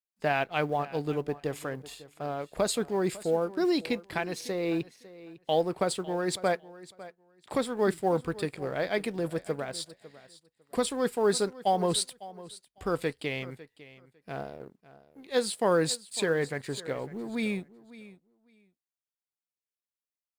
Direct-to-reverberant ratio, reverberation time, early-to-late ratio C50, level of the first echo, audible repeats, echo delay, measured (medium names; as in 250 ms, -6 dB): no reverb, no reverb, no reverb, -18.0 dB, 2, 552 ms